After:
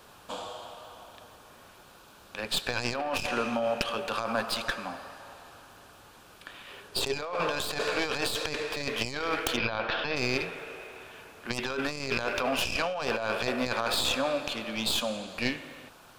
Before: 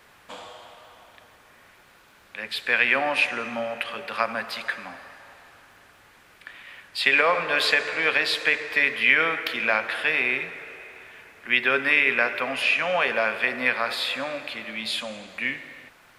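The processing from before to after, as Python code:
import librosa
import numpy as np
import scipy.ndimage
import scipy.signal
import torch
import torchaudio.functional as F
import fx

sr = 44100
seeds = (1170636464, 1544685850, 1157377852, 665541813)

y = fx.tracing_dist(x, sr, depth_ms=0.16)
y = fx.peak_eq(y, sr, hz=2000.0, db=-14.0, octaves=0.56)
y = fx.over_compress(y, sr, threshold_db=-30.0, ratio=-1.0)
y = fx.peak_eq(y, sr, hz=420.0, db=13.0, octaves=0.34, at=(6.69, 7.16))
y = fx.cheby2_lowpass(y, sr, hz=8300.0, order=4, stop_db=40, at=(9.56, 10.15), fade=0.02)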